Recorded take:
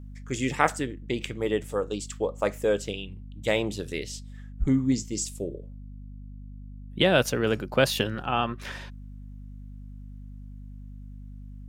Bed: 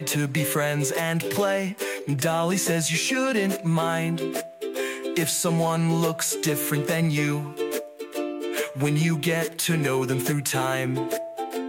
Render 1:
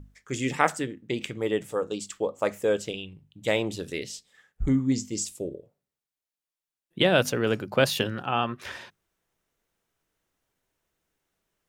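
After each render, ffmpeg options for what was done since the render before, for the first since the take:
-af "bandreject=f=50:t=h:w=6,bandreject=f=100:t=h:w=6,bandreject=f=150:t=h:w=6,bandreject=f=200:t=h:w=6,bandreject=f=250:t=h:w=6"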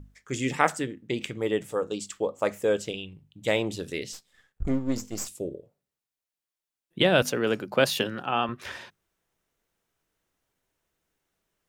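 -filter_complex "[0:a]asplit=3[a][b][c];[a]afade=t=out:st=4.12:d=0.02[d];[b]aeval=exprs='if(lt(val(0),0),0.251*val(0),val(0))':c=same,afade=t=in:st=4.12:d=0.02,afade=t=out:st=5.27:d=0.02[e];[c]afade=t=in:st=5.27:d=0.02[f];[d][e][f]amix=inputs=3:normalize=0,asettb=1/sr,asplit=3[g][h][i];[g]atrim=end=7.224[j];[h]atrim=start=7.22:end=8.49,asetpts=PTS-STARTPTS,afade=t=in:d=0.004:c=qsin,afade=t=out:st=1.266:d=0.004:c=qsin,highpass=160[k];[i]atrim=start=8.486[l];[j][k]acrossfade=d=0.004:c1=hsin:c2=qsin[m];[m][l]acrossfade=d=0.004:c1=qsin:c2=hsin"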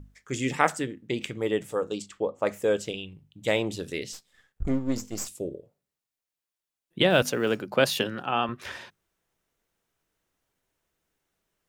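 -filter_complex "[0:a]asettb=1/sr,asplit=3[a][b][c];[a]atrim=end=2.024[d];[b]atrim=start=2.02:end=2.47,asetpts=PTS-STARTPTS,afade=t=in:d=0.004:c=qsin,afade=t=out:st=0.446:d=0.004:c=qsin,lowpass=f=2.2k:p=1[e];[c]atrim=start=2.466[f];[d][e]acrossfade=d=0.004:c1=hsin:c2=qsin[g];[g][f]acrossfade=d=0.004:c1=qsin:c2=hsin,asettb=1/sr,asplit=3[h][i][j];[h]atrim=end=7.104[k];[i]atrim=start=7.1:end=7.62,asetpts=PTS-STARTPTS,afade=t=in:d=0.004:c=qsin,afade=t=out:st=0.516:d=0.004:c=qsin,acrusher=bits=9:mode=log:mix=0:aa=0.000001[l];[j]atrim=start=7.616[m];[k][l]acrossfade=d=0.004:c1=hsin:c2=qsin[n];[n][m]acrossfade=d=0.004:c1=qsin:c2=hsin"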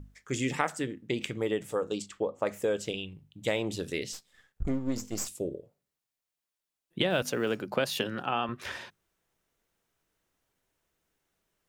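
-af "acompressor=threshold=-26dB:ratio=3"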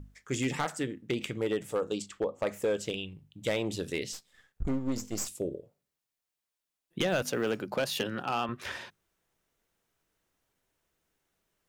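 -af "asoftclip=type=hard:threshold=-22.5dB"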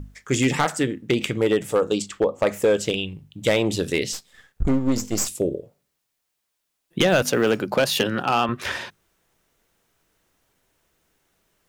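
-af "volume=10.5dB"

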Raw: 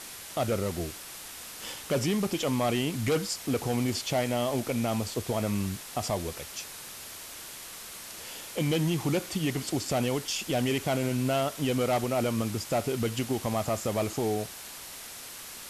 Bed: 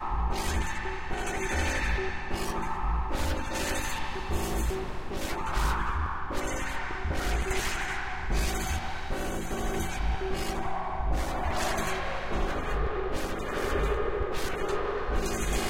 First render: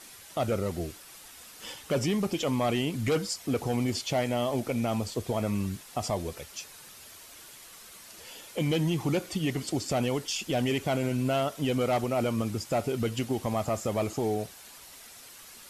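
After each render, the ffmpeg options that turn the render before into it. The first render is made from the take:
-af "afftdn=nr=8:nf=-43"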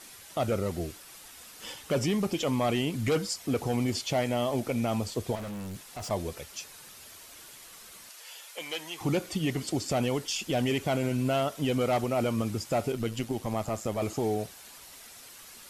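-filter_complex "[0:a]asettb=1/sr,asplit=3[a][b][c];[a]atrim=end=5.354[d];[b]atrim=start=5.35:end=6.11,asetpts=PTS-STARTPTS,afade=t=in:d=0.004:c=qsin,afade=t=out:st=0.756:d=0.004:c=qsin,asoftclip=type=hard:threshold=-35.5dB[e];[c]atrim=start=6.106[f];[d][e]acrossfade=d=0.004:c1=hsin:c2=qsin[g];[g][f]acrossfade=d=0.004:c1=qsin:c2=hsin,asettb=1/sr,asplit=3[h][i][j];[h]atrim=end=8.094[k];[i]atrim=start=8.09:end=9.01,asetpts=PTS-STARTPTS,afade=t=in:d=0.004:c=qsin,afade=t=out:st=0.916:d=0.004:c=qsin,highpass=830[l];[j]atrim=start=9.006[m];[k][l]acrossfade=d=0.004:c1=hsin:c2=qsin[n];[n][m]acrossfade=d=0.004:c1=qsin:c2=hsin,asettb=1/sr,asplit=3[o][p][q];[o]atrim=end=12.924[r];[p]atrim=start=12.92:end=14.02,asetpts=PTS-STARTPTS,afade=t=in:d=0.004:c=qsin,afade=t=out:st=1.096:d=0.004:c=qsin,tremolo=f=110:d=0.519[s];[q]atrim=start=14.016[t];[r][s]acrossfade=d=0.004:c1=hsin:c2=qsin[u];[u][t]acrossfade=d=0.004:c1=qsin:c2=hsin"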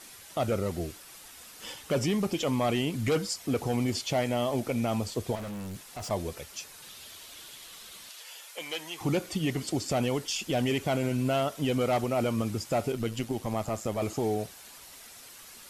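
-filter_complex "[0:a]asettb=1/sr,asplit=3[a][b][c];[a]atrim=end=6.824[d];[b]atrim=start=6.82:end=8.23,asetpts=PTS-STARTPTS,afade=t=in:d=0.004:c=qsin,afade=t=out:st=1.406:d=0.004:c=qsin,equalizer=f=3.5k:w=1.9:g=7.5[e];[c]atrim=start=8.226[f];[d][e]acrossfade=d=0.004:c1=hsin:c2=qsin[g];[g][f]acrossfade=d=0.004:c1=qsin:c2=hsin"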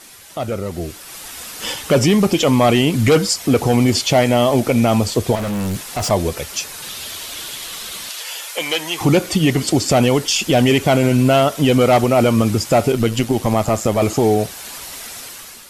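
-filter_complex "[0:a]asplit=2[a][b];[b]alimiter=level_in=2.5dB:limit=-24dB:level=0:latency=1:release=342,volume=-2.5dB,volume=1.5dB[c];[a][c]amix=inputs=2:normalize=0,dynaudnorm=f=690:g=3:m=10.5dB"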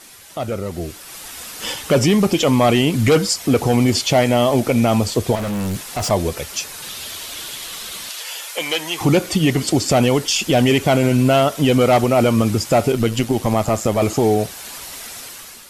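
-af "volume=-1dB"

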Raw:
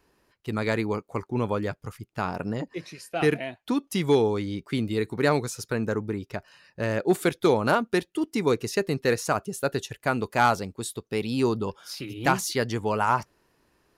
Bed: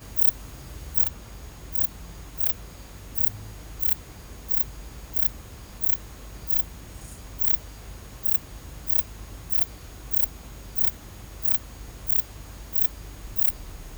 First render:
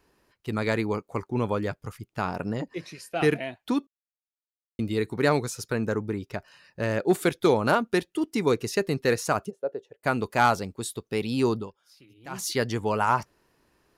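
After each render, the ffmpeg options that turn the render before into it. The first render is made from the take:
-filter_complex "[0:a]asplit=3[a][b][c];[a]afade=t=out:st=9.49:d=0.02[d];[b]bandpass=f=510:t=q:w=3.1,afade=t=in:st=9.49:d=0.02,afade=t=out:st=10.03:d=0.02[e];[c]afade=t=in:st=10.03:d=0.02[f];[d][e][f]amix=inputs=3:normalize=0,asplit=5[g][h][i][j][k];[g]atrim=end=3.87,asetpts=PTS-STARTPTS,afade=t=out:st=3.866:d=0.004:c=hsin[l];[h]atrim=start=3.87:end=4.79,asetpts=PTS-STARTPTS,volume=0[m];[i]atrim=start=4.79:end=11.71,asetpts=PTS-STARTPTS,afade=t=in:d=0.004:c=hsin,afade=t=out:st=6.75:d=0.17:silence=0.105925[n];[j]atrim=start=11.71:end=12.3,asetpts=PTS-STARTPTS,volume=-19.5dB[o];[k]atrim=start=12.3,asetpts=PTS-STARTPTS,afade=t=in:d=0.17:silence=0.105925[p];[l][m][n][o][p]concat=n=5:v=0:a=1"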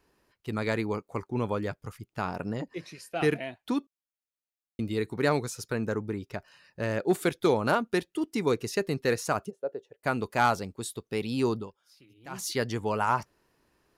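-af "volume=-3dB"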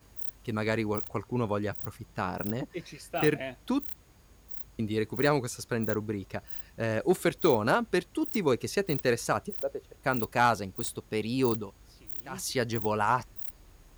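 -filter_complex "[1:a]volume=-15.5dB[a];[0:a][a]amix=inputs=2:normalize=0"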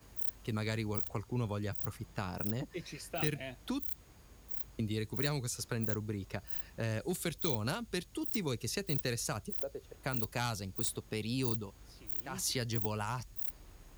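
-filter_complex "[0:a]acrossover=split=160|3000[a][b][c];[b]acompressor=threshold=-39dB:ratio=4[d];[a][d][c]amix=inputs=3:normalize=0"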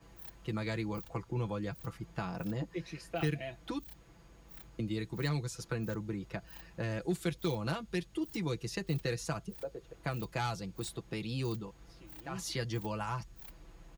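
-af "aemphasis=mode=reproduction:type=50kf,aecho=1:1:6:0.65"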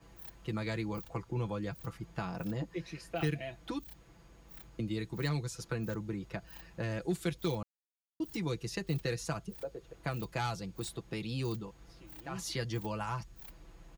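-filter_complex "[0:a]asplit=3[a][b][c];[a]atrim=end=7.63,asetpts=PTS-STARTPTS,afade=t=out:st=7.626:d=0.004:c=hsin[d];[b]atrim=start=7.63:end=8.2,asetpts=PTS-STARTPTS,volume=0[e];[c]atrim=start=8.2,asetpts=PTS-STARTPTS,afade=t=in:d=0.004:c=hsin[f];[d][e][f]concat=n=3:v=0:a=1"

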